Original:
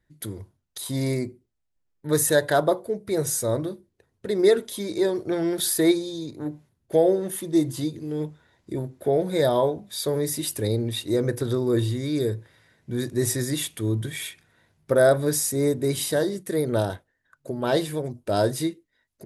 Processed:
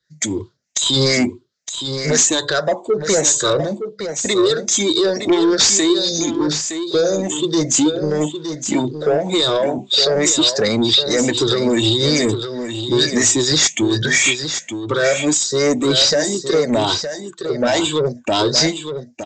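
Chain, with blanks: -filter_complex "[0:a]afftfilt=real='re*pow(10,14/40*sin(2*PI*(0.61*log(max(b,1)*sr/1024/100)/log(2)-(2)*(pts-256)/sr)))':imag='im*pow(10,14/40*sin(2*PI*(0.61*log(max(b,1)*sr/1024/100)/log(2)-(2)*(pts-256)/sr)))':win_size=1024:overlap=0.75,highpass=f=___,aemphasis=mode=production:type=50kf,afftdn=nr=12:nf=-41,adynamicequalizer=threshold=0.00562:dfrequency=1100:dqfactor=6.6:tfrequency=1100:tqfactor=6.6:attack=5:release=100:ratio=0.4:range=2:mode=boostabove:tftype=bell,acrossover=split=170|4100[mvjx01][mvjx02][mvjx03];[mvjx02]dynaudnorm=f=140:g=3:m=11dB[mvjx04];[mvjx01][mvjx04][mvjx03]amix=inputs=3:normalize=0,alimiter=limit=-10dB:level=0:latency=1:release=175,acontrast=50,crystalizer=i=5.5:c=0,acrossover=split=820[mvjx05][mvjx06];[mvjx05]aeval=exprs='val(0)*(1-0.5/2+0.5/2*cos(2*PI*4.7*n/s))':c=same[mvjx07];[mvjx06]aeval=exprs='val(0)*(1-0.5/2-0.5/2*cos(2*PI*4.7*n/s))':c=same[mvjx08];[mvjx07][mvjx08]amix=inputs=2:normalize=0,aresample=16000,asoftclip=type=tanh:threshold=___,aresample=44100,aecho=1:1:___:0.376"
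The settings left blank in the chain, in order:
97, -10dB, 915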